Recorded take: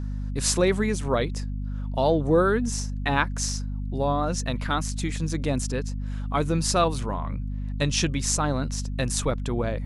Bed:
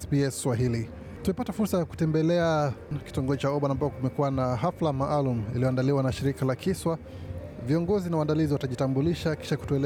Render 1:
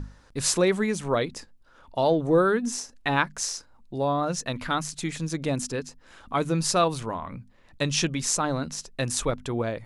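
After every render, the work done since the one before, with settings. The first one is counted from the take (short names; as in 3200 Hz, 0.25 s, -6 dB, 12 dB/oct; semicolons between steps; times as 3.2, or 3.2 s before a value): notches 50/100/150/200/250 Hz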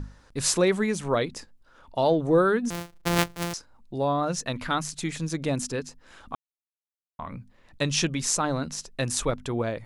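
2.7–3.54 sample sorter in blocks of 256 samples; 6.35–7.19 mute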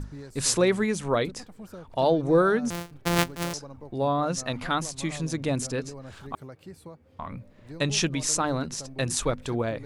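add bed -17 dB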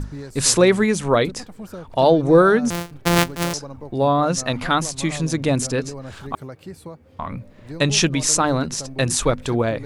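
gain +7.5 dB; limiter -2 dBFS, peak gain reduction 2.5 dB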